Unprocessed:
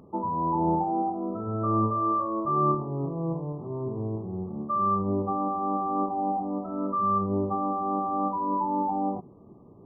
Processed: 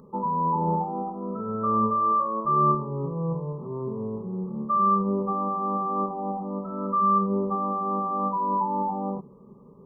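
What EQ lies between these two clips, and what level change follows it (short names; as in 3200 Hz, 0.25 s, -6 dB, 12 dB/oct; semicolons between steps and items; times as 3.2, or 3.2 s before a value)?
fixed phaser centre 470 Hz, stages 8; +4.0 dB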